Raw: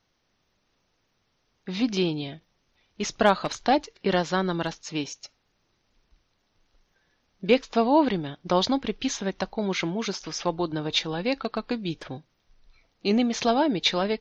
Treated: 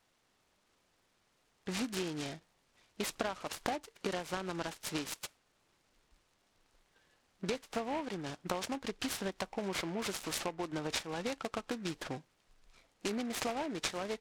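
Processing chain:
low-shelf EQ 260 Hz −8 dB
downward compressor 12 to 1, threshold −33 dBFS, peak gain reduction 19 dB
short delay modulated by noise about 1,400 Hz, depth 0.061 ms

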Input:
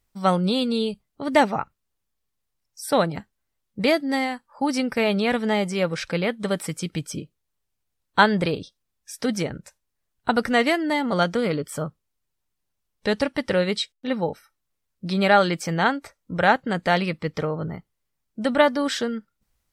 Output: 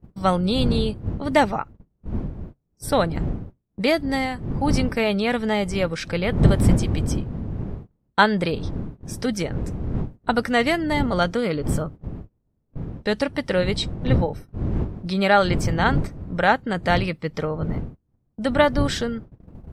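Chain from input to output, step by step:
wind on the microphone 160 Hz −27 dBFS
noise gate −35 dBFS, range −26 dB

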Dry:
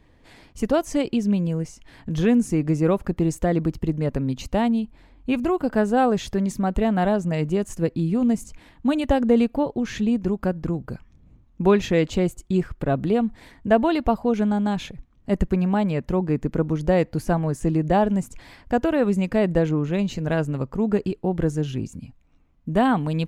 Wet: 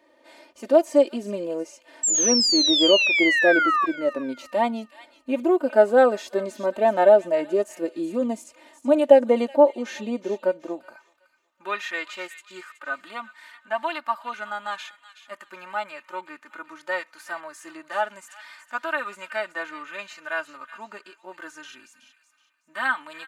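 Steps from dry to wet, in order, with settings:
comb filter 3.3 ms, depth 71%
harmonic and percussive parts rebalanced percussive −12 dB
high-pass filter sweep 500 Hz → 1,300 Hz, 0:10.59–0:11.26
sound drawn into the spectrogram fall, 0:02.03–0:03.86, 1,100–7,700 Hz −22 dBFS
delay with a high-pass on its return 373 ms, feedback 31%, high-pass 2,100 Hz, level −11 dB
level +1 dB

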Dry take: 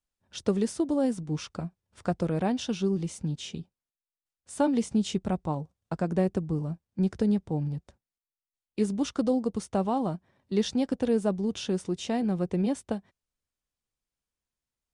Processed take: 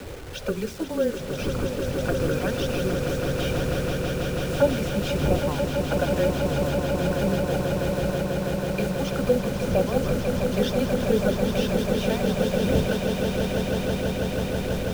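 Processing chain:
wind on the microphone 140 Hz −28 dBFS
spectral tilt +2.5 dB per octave
mains-hum notches 60/120/180/240/300/360/420/480/540 Hz
in parallel at 0 dB: downward compressor 10 to 1, threshold −38 dBFS, peak gain reduction 18 dB
on the sum: flanger swept by the level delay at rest 4.8 ms, full sweep at −20.5 dBFS
Gaussian smoothing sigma 1.7 samples
hollow resonant body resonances 550/1,500/2,400 Hz, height 13 dB, ringing for 20 ms
bit reduction 7 bits
frequency shifter −14 Hz
on a send: echo that builds up and dies away 163 ms, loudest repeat 8, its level −8 dB

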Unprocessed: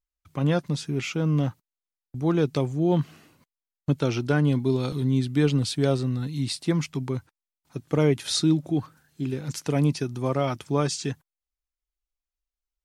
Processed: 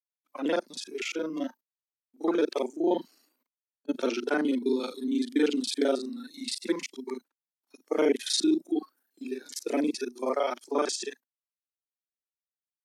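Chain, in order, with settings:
reversed piece by piece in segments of 35 ms
elliptic high-pass filter 250 Hz, stop band 50 dB
noise reduction from a noise print of the clip's start 16 dB

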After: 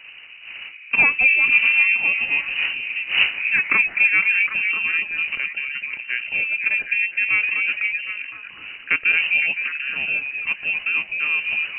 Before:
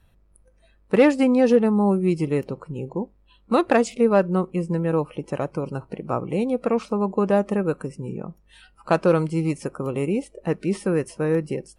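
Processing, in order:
wind on the microphone 520 Hz −33 dBFS
echo through a band-pass that steps 254 ms, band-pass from 460 Hz, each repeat 0.7 octaves, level −1 dB
voice inversion scrambler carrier 2,900 Hz
level −1 dB

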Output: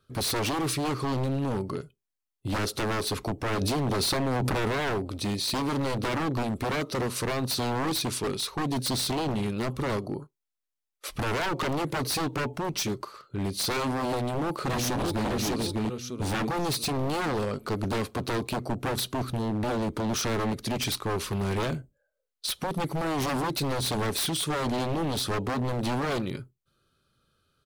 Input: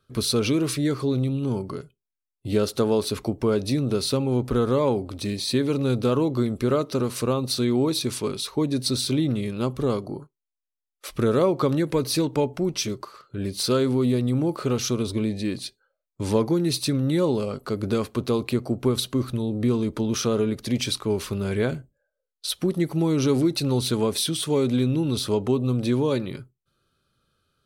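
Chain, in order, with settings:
0:14.09–0:15.29: delay throw 600 ms, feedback 35%, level −2.5 dB
wave folding −23 dBFS
0:03.61–0:04.68: envelope flattener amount 100%

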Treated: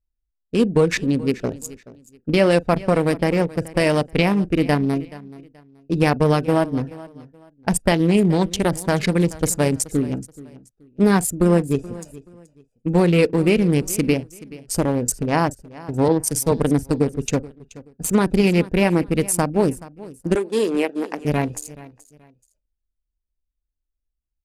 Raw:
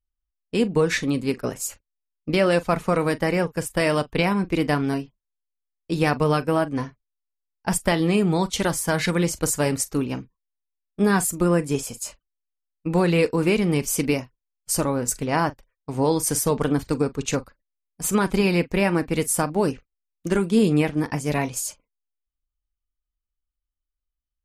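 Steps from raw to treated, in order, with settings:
adaptive Wiener filter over 41 samples
0:14.12–0:14.82: high-shelf EQ 8,200 Hz −8.5 dB
0:20.35–0:21.25: high-pass filter 330 Hz 24 dB per octave
dynamic equaliser 1,300 Hz, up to −4 dB, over −37 dBFS, Q 2
repeating echo 428 ms, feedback 27%, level −19 dB
0:16.08–0:16.52: multiband upward and downward expander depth 100%
level +4.5 dB

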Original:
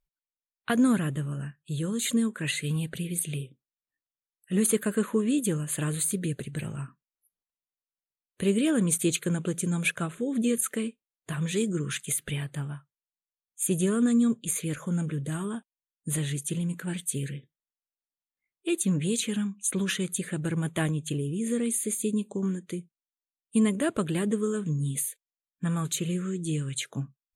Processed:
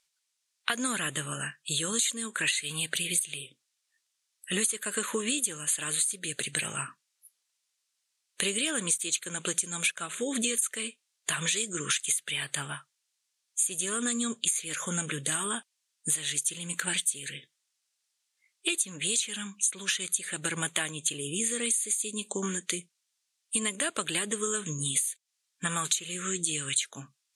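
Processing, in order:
meter weighting curve ITU-R 468
downward compressor 10 to 1, threshold −35 dBFS, peak gain reduction 23.5 dB
level +9 dB

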